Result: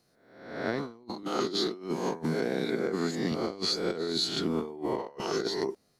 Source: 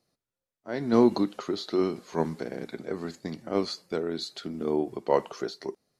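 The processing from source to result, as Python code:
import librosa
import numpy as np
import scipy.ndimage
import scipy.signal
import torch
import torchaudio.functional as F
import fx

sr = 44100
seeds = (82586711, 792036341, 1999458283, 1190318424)

y = fx.spec_swells(x, sr, rise_s=0.79)
y = fx.highpass(y, sr, hz=130.0, slope=24, at=(1.23, 3.32))
y = fx.over_compress(y, sr, threshold_db=-31.0, ratio=-0.5)
y = fx.notch(y, sr, hz=580.0, q=12.0)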